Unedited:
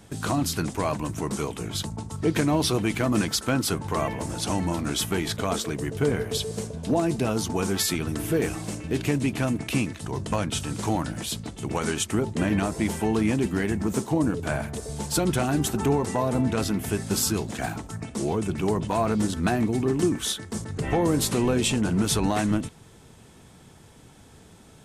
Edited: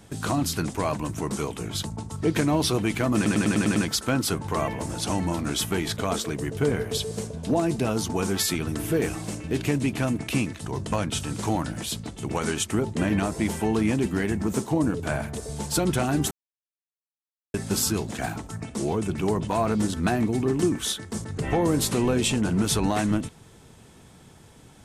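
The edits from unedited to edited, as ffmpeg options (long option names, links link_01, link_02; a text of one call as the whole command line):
ffmpeg -i in.wav -filter_complex "[0:a]asplit=9[link_01][link_02][link_03][link_04][link_05][link_06][link_07][link_08][link_09];[link_01]atrim=end=3.262[link_10];[link_02]atrim=start=3.158:end=3.262[link_11];[link_03]atrim=start=3.158:end=3.262[link_12];[link_04]atrim=start=3.158:end=3.262[link_13];[link_05]atrim=start=3.158:end=3.262[link_14];[link_06]atrim=start=3.158:end=3.262[link_15];[link_07]atrim=start=3.158:end=15.71,asetpts=PTS-STARTPTS,afade=type=out:start_time=12.548:duration=0.004:curve=hsin[link_16];[link_08]atrim=start=15.71:end=16.94,asetpts=PTS-STARTPTS,volume=0[link_17];[link_09]atrim=start=16.94,asetpts=PTS-STARTPTS,afade=type=in:duration=0.004:curve=hsin[link_18];[link_10][link_11]acrossfade=duration=0.004:curve1=hsin:curve2=hsin[link_19];[link_19][link_12]acrossfade=duration=0.004:curve1=hsin:curve2=hsin[link_20];[link_20][link_13]acrossfade=duration=0.004:curve1=hsin:curve2=hsin[link_21];[link_21][link_14]acrossfade=duration=0.004:curve1=hsin:curve2=hsin[link_22];[link_22][link_15]acrossfade=duration=0.004:curve1=hsin:curve2=hsin[link_23];[link_16][link_17][link_18]concat=n=3:v=0:a=1[link_24];[link_23][link_24]acrossfade=duration=0.004:curve1=hsin:curve2=hsin" out.wav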